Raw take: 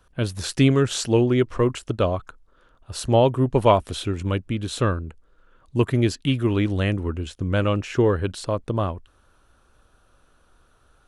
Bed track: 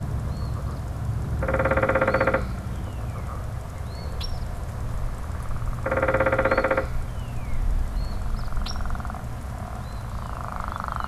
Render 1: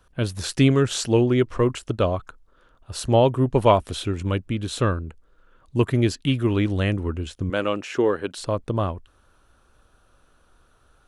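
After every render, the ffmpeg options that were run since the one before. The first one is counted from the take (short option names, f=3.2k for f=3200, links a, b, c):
-filter_complex "[0:a]asettb=1/sr,asplit=3[a][b][c];[a]atrim=end=7.504[d];[b]atrim=start=7.5:end=8.37,asetpts=PTS-STARTPTS,afade=t=in:d=0.004:c=qsin,afade=t=out:st=0.866:d=0.004:c=qsin,highpass=260[e];[c]atrim=start=8.366[f];[d][e]acrossfade=d=0.004:c1=hsin:c2=qsin[g];[g][f]acrossfade=d=0.004:c1=qsin:c2=hsin"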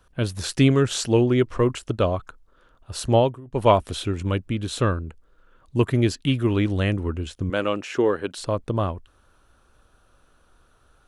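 -filter_complex "[0:a]asplit=3[a][b][c];[a]atrim=end=3.41,asetpts=PTS-STARTPTS,afade=t=out:st=3.17:d=0.24:silence=0.0707946[d];[b]atrim=start=3.41:end=3.45,asetpts=PTS-STARTPTS,volume=-23dB[e];[c]atrim=start=3.45,asetpts=PTS-STARTPTS,afade=t=in:d=0.24:silence=0.0707946[f];[d][e][f]concat=n=3:v=0:a=1"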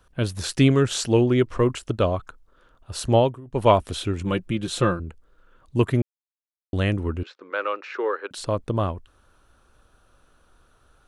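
-filter_complex "[0:a]asettb=1/sr,asplit=3[a][b][c];[a]atrim=end=4.244[d];[b]atrim=start=4.24:end=5,asetpts=PTS-STARTPTS,afade=t=in:d=0.004:c=qsin,afade=t=out:st=0.756:d=0.004:c=qsin,aecho=1:1:5.7:0.63,atrim=end_sample=33516[e];[c]atrim=start=4.996[f];[d][e]acrossfade=d=0.004:c1=hsin:c2=qsin[g];[g][f]acrossfade=d=0.004:c1=qsin:c2=hsin,asettb=1/sr,asplit=3[h][i][j];[h]atrim=end=7.234[k];[i]atrim=start=7.23:end=8.31,asetpts=PTS-STARTPTS,afade=t=in:d=0.004:c=qsin,afade=t=out:st=1.076:d=0.004:c=qsin,highpass=f=450:w=0.5412,highpass=f=450:w=1.3066,equalizer=f=670:t=q:w=4:g=-9,equalizer=f=1.3k:t=q:w=4:g=5,equalizer=f=3.1k:t=q:w=4:g=-10,lowpass=f=4.2k:w=0.5412,lowpass=f=4.2k:w=1.3066[l];[j]atrim=start=8.306[m];[k][l]acrossfade=d=0.004:c1=hsin:c2=qsin[n];[n][m]acrossfade=d=0.004:c1=qsin:c2=hsin,asplit=3[o][p][q];[o]atrim=end=6.02,asetpts=PTS-STARTPTS,afade=t=out:st=6.016:d=0.004:c=hsin[r];[p]atrim=start=6.02:end=6.73,asetpts=PTS-STARTPTS,volume=0[s];[q]atrim=start=6.73,asetpts=PTS-STARTPTS,afade=t=in:d=0.004:c=hsin[t];[r][s][t]concat=n=3:v=0:a=1"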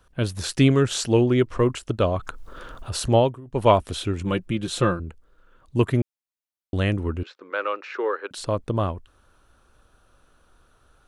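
-filter_complex "[0:a]asettb=1/sr,asplit=3[a][b][c];[a]atrim=end=2.164[d];[b]atrim=start=2.16:end=3.24,asetpts=PTS-STARTPTS,afade=t=in:d=0.004:c=qsin,afade=t=out:st=1.076:d=0.004:c=qsin,acompressor=mode=upward:threshold=-21dB:ratio=2.5:attack=3.2:release=140:knee=2.83:detection=peak[e];[c]atrim=start=3.236[f];[d][e]acrossfade=d=0.004:c1=hsin:c2=qsin[g];[g][f]acrossfade=d=0.004:c1=qsin:c2=hsin"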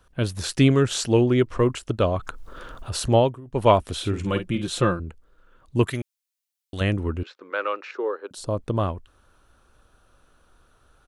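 -filter_complex "[0:a]asplit=3[a][b][c];[a]afade=t=out:st=4.01:d=0.02[d];[b]asplit=2[e][f];[f]adelay=49,volume=-9dB[g];[e][g]amix=inputs=2:normalize=0,afade=t=in:st=4.01:d=0.02,afade=t=out:st=4.61:d=0.02[h];[c]afade=t=in:st=4.61:d=0.02[i];[d][h][i]amix=inputs=3:normalize=0,asettb=1/sr,asplit=3[j][k][l];[j]atrim=end=5.874[m];[k]atrim=start=5.87:end=6.81,asetpts=PTS-STARTPTS,afade=t=in:d=0.004:c=qsin,afade=t=out:st=0.936:d=0.004:c=qsin,tiltshelf=f=1.4k:g=-9[n];[l]atrim=start=6.806[o];[m][n]acrossfade=d=0.004:c1=hsin:c2=qsin[p];[p][o]acrossfade=d=0.004:c1=qsin:c2=hsin,asettb=1/sr,asplit=3[q][r][s];[q]atrim=end=7.914[t];[r]atrim=start=7.91:end=8.57,asetpts=PTS-STARTPTS,afade=t=in:d=0.004:c=qsin,afade=t=out:st=0.656:d=0.004:c=qsin,equalizer=f=2.1k:w=0.78:g=-12[u];[s]atrim=start=8.566[v];[t][u]acrossfade=d=0.004:c1=hsin:c2=qsin[w];[w][v]acrossfade=d=0.004:c1=qsin:c2=hsin"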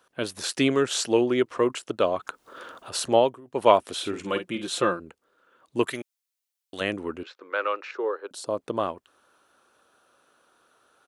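-af "highpass=320"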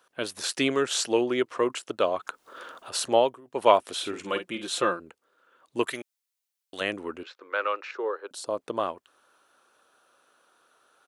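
-af "lowshelf=f=250:g=-9.5"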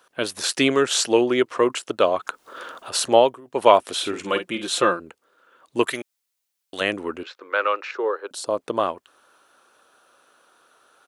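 -af "volume=6dB,alimiter=limit=-1dB:level=0:latency=1"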